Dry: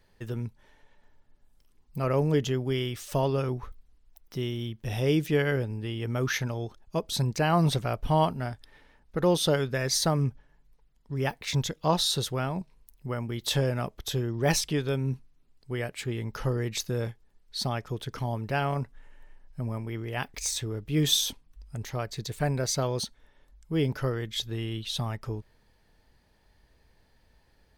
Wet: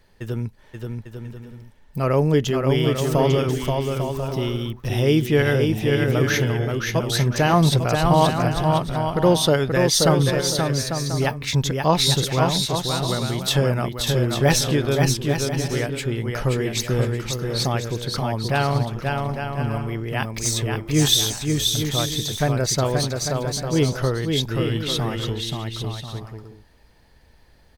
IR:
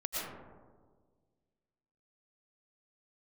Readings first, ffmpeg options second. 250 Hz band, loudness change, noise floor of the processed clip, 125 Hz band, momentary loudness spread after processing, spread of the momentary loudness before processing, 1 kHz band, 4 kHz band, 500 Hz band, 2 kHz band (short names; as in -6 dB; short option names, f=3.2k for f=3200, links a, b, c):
+8.5 dB, +8.0 dB, -52 dBFS, +8.5 dB, 10 LU, 12 LU, +8.5 dB, +8.5 dB, +8.5 dB, +8.5 dB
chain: -af "aecho=1:1:530|848|1039|1153|1222:0.631|0.398|0.251|0.158|0.1,volume=6.5dB"